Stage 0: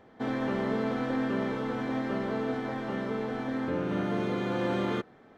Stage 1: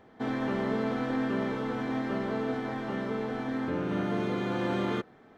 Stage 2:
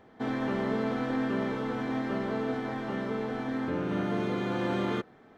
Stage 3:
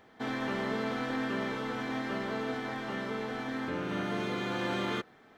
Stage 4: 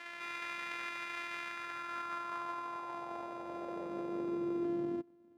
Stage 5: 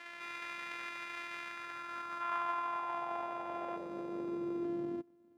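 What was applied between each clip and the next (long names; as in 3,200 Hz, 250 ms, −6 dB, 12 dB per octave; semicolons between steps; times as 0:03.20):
notch filter 540 Hz, Q 14
no processing that can be heard
tilt shelving filter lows −5 dB, about 1,200 Hz
samples sorted by size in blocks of 128 samples; backwards echo 362 ms −4.5 dB; band-pass filter sweep 2,000 Hz → 290 Hz, 0:01.41–0:04.92; level +1.5 dB
gain on a spectral selection 0:02.21–0:03.77, 630–3,500 Hz +7 dB; level −2 dB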